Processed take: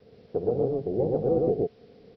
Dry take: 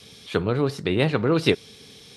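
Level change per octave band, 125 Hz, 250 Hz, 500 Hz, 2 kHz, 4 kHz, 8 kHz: −7.5 dB, −6.0 dB, −0.5 dB, below −30 dB, below −30 dB, below −35 dB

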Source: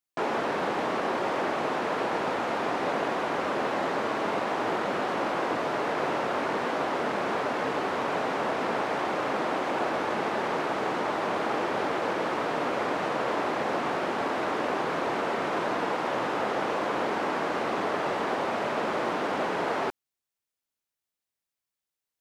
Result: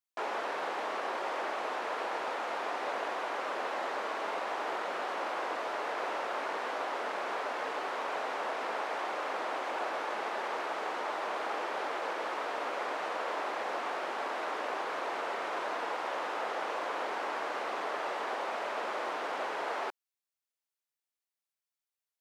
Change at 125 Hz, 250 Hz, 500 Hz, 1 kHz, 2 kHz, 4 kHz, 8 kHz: below −20 dB, −15.0 dB, −8.0 dB, −5.5 dB, −5.0 dB, −5.0 dB, −5.0 dB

